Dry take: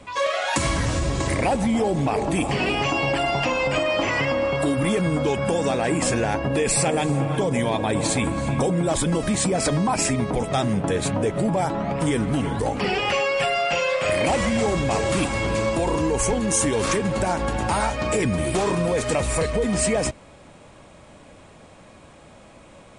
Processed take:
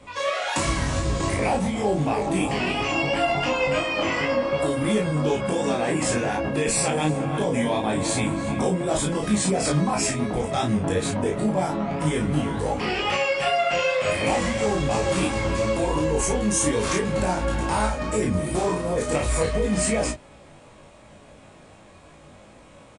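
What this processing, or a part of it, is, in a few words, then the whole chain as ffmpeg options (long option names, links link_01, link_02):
double-tracked vocal: -filter_complex "[0:a]asettb=1/sr,asplit=3[link_01][link_02][link_03];[link_01]atrim=end=17.864[link_04];[link_02]atrim=start=17.86:end=19.12,asetpts=PTS-STARTPTS,afade=type=in:duration=0.004:curve=qsin,afade=type=out:start_time=1.256:duration=0.004:curve=qsin,equalizer=frequency=2900:width=0.72:gain=-5.5[link_05];[link_03]atrim=start=19.116[link_06];[link_04][link_05]acrossfade=duration=0.004:curve1=hsin:curve2=qsin[link_07];[link_07][link_06]acrossfade=duration=0.004:curve1=qsin:curve2=hsin,asplit=2[link_08][link_09];[link_09]adelay=33,volume=-3dB[link_10];[link_08][link_10]amix=inputs=2:normalize=0,flanger=delay=18.5:depth=2.7:speed=2.8"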